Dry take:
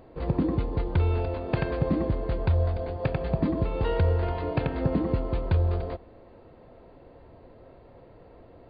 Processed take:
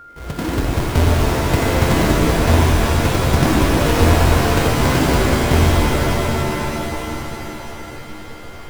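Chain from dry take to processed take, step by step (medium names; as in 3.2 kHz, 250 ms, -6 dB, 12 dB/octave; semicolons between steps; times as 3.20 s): square wave that keeps the level; level rider gain up to 9.5 dB; whistle 1.4 kHz -30 dBFS; pitch-shifted reverb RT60 3.7 s, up +7 st, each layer -2 dB, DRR -2.5 dB; trim -8 dB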